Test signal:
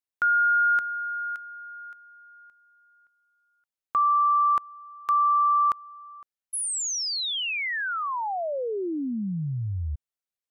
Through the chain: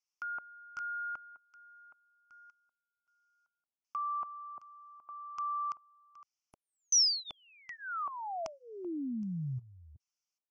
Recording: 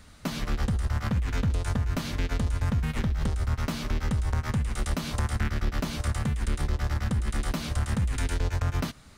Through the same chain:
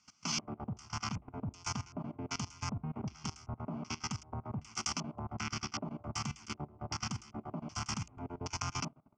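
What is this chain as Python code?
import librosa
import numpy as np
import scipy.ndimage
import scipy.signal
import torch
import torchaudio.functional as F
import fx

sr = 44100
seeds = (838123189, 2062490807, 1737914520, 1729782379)

y = scipy.signal.sosfilt(scipy.signal.butter(4, 110.0, 'highpass', fs=sr, output='sos'), x)
y = fx.low_shelf(y, sr, hz=330.0, db=-8.5)
y = fx.level_steps(y, sr, step_db=19)
y = fx.filter_lfo_lowpass(y, sr, shape='square', hz=1.3, low_hz=570.0, high_hz=5700.0, q=3.7)
y = fx.fixed_phaser(y, sr, hz=2600.0, stages=8)
y = y * librosa.db_to_amplitude(3.0)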